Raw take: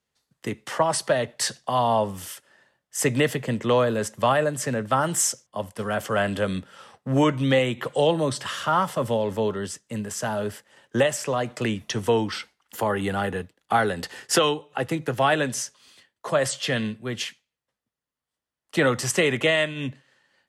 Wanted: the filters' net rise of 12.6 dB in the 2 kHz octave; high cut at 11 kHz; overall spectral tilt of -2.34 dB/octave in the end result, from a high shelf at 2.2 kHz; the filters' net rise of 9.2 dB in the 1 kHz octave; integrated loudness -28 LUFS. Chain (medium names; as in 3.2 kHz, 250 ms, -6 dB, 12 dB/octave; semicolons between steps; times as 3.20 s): low-pass 11 kHz; peaking EQ 1 kHz +7.5 dB; peaking EQ 2 kHz +9 dB; treble shelf 2.2 kHz +8 dB; trim -11 dB